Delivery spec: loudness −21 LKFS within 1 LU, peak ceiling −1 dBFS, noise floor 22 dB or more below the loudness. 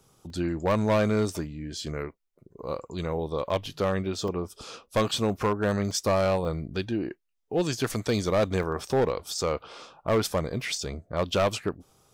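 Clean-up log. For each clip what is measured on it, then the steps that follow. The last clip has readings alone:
share of clipped samples 1.3%; peaks flattened at −18.0 dBFS; number of dropouts 8; longest dropout 2.0 ms; integrated loudness −28.5 LKFS; sample peak −18.0 dBFS; target loudness −21.0 LKFS
→ clipped peaks rebuilt −18 dBFS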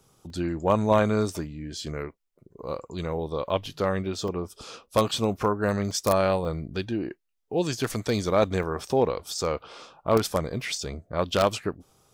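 share of clipped samples 0.0%; number of dropouts 8; longest dropout 2.0 ms
→ repair the gap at 0:00.30/0:03.50/0:04.28/0:05.91/0:06.45/0:08.63/0:09.38/0:10.61, 2 ms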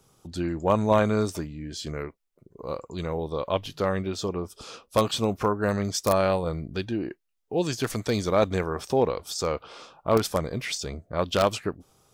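number of dropouts 0; integrated loudness −27.0 LKFS; sample peak −9.0 dBFS; target loudness −21.0 LKFS
→ level +6 dB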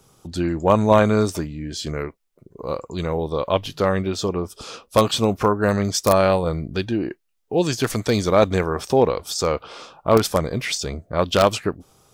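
integrated loudness −21.0 LKFS; sample peak −3.0 dBFS; background noise floor −64 dBFS

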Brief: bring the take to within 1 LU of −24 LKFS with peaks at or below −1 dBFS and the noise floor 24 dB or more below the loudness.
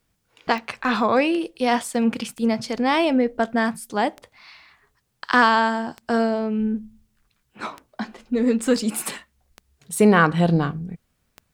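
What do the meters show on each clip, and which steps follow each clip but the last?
number of clicks 7; integrated loudness −21.5 LKFS; sample peak −4.0 dBFS; target loudness −24.0 LKFS
→ click removal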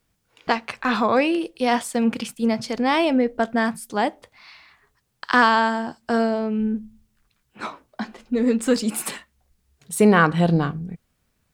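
number of clicks 0; integrated loudness −21.5 LKFS; sample peak −4.0 dBFS; target loudness −24.0 LKFS
→ level −2.5 dB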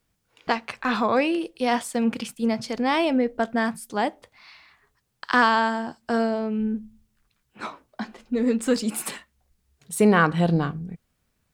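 integrated loudness −24.0 LKFS; sample peak −6.5 dBFS; background noise floor −73 dBFS

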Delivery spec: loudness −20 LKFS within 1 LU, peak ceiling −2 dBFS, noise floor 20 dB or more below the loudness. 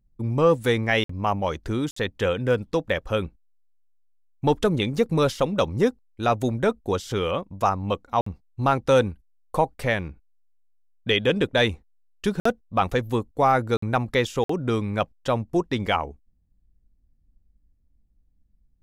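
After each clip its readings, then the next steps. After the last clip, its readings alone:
number of dropouts 6; longest dropout 54 ms; integrated loudness −24.5 LKFS; sample peak −8.5 dBFS; target loudness −20.0 LKFS
→ repair the gap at 0:01.04/0:01.91/0:08.21/0:12.40/0:13.77/0:14.44, 54 ms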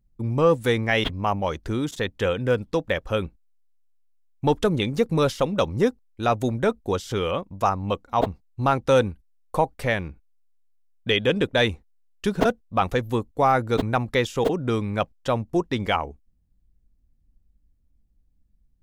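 number of dropouts 0; integrated loudness −24.0 LKFS; sample peak −8.0 dBFS; target loudness −20.0 LKFS
→ level +4 dB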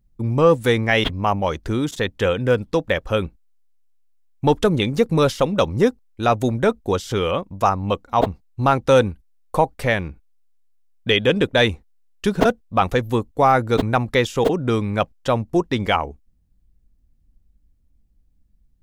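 integrated loudness −20.0 LKFS; sample peak −4.0 dBFS; background noise floor −60 dBFS

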